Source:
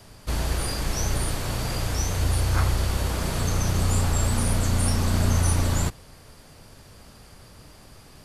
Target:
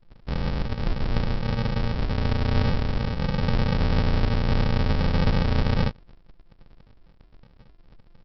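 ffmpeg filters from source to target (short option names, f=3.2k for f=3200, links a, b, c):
-af "asuperstop=centerf=4300:order=20:qfactor=3.5,aecho=1:1:7:0.86,anlmdn=1,aresample=11025,acrusher=samples=32:mix=1:aa=0.000001,aresample=44100"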